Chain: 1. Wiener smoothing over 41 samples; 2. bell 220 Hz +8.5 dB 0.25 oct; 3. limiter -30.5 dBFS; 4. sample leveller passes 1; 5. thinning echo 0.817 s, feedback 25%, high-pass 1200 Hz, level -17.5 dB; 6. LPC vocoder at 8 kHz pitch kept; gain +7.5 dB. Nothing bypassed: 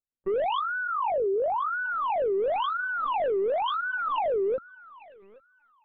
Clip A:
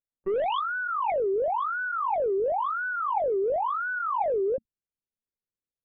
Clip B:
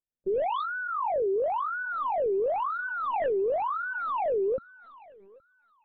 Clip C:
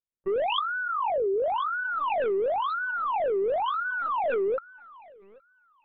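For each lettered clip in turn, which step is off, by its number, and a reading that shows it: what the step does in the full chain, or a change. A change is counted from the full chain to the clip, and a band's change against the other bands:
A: 5, crest factor change +2.5 dB; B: 4, 2 kHz band -2.0 dB; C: 2, crest factor change +4.0 dB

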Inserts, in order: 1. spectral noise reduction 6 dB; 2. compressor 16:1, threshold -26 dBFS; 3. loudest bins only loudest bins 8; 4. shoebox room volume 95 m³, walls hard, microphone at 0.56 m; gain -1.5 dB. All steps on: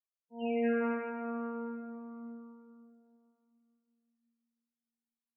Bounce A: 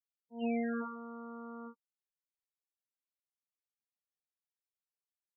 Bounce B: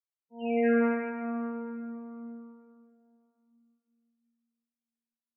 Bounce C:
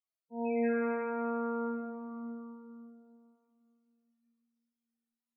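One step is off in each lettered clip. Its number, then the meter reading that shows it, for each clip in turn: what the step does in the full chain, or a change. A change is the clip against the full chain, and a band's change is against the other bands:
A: 4, echo-to-direct 3.5 dB to none; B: 2, mean gain reduction 1.5 dB; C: 1, 1 kHz band +2.0 dB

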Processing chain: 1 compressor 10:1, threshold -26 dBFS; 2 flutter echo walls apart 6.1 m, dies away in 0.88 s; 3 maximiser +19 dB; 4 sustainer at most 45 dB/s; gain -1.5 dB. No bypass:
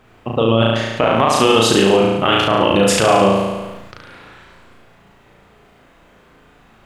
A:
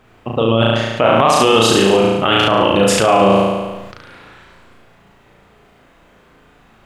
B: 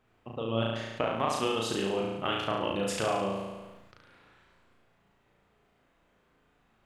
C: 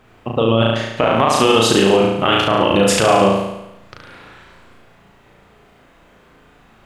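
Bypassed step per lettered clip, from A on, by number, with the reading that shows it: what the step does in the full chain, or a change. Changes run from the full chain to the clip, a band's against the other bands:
1, mean gain reduction 4.0 dB; 3, crest factor change +4.5 dB; 4, momentary loudness spread change -2 LU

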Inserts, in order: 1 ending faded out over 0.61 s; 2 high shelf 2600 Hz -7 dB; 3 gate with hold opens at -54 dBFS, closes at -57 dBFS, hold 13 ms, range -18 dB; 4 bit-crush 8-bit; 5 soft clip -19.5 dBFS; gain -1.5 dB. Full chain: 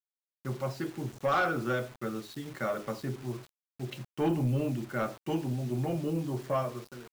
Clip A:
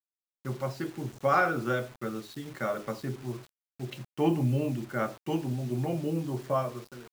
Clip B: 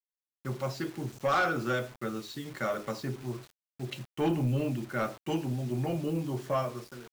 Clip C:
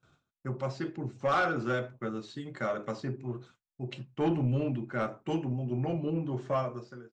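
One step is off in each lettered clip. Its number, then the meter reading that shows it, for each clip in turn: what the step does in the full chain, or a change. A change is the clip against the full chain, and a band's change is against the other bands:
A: 5, distortion -16 dB; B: 2, 4 kHz band +2.5 dB; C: 4, distortion -24 dB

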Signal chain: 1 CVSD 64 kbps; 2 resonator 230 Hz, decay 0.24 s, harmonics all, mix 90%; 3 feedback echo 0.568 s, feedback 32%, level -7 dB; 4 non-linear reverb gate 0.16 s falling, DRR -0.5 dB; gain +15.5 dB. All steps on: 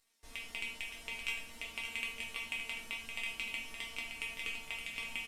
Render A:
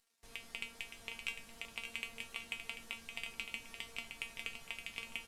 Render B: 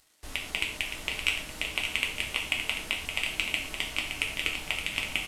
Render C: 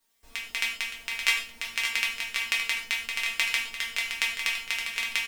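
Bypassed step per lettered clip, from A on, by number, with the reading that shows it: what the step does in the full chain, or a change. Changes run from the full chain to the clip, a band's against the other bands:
4, echo-to-direct 2.0 dB to -6.5 dB; 2, 125 Hz band +4.0 dB; 1, 500 Hz band -8.0 dB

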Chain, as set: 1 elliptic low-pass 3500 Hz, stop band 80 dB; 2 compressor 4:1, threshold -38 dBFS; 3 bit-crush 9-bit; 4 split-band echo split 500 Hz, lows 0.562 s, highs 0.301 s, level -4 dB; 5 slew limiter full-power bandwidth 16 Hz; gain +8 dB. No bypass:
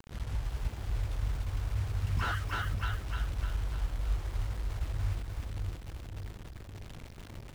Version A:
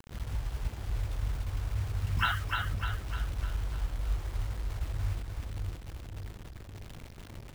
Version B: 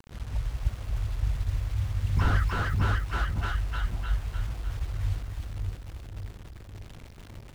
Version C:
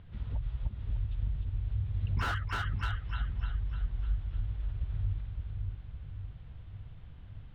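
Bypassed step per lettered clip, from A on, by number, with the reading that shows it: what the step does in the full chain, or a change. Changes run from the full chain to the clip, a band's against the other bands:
5, distortion -13 dB; 2, loudness change +5.0 LU; 3, distortion -16 dB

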